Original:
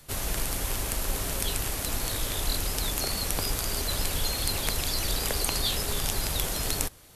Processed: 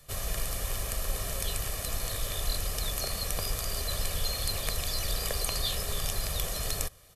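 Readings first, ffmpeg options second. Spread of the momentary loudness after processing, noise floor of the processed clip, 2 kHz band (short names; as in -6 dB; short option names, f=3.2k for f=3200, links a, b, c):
3 LU, -42 dBFS, -4.0 dB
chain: -af "aecho=1:1:1.7:0.56,volume=-5dB"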